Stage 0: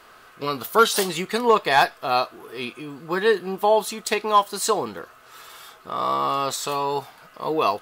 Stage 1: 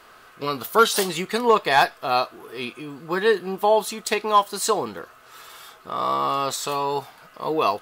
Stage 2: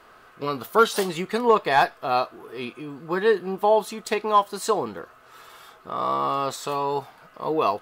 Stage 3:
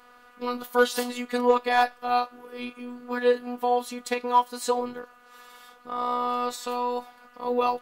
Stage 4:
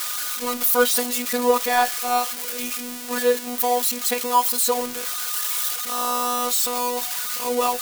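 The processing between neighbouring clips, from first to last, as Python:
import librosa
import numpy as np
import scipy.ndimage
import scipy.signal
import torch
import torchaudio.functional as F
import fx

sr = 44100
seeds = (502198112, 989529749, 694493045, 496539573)

y1 = x
y2 = fx.high_shelf(y1, sr, hz=2300.0, db=-8.0)
y3 = fx.robotise(y2, sr, hz=245.0)
y4 = y3 + 0.5 * 10.0 ** (-17.5 / 20.0) * np.diff(np.sign(y3), prepend=np.sign(y3[:1]))
y4 = y4 * 10.0 ** (2.0 / 20.0)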